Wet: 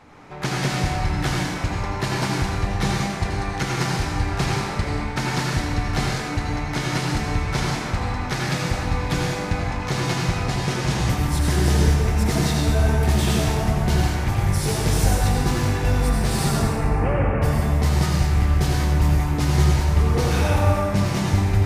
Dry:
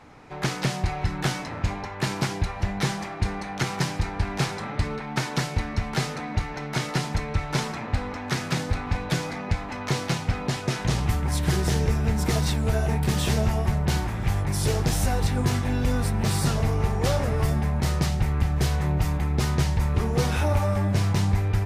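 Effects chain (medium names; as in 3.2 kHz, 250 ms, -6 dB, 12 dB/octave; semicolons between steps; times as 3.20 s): 16.49–17.42 s: steep low-pass 2.7 kHz 72 dB/octave; reverberation RT60 1.4 s, pre-delay 68 ms, DRR -2.5 dB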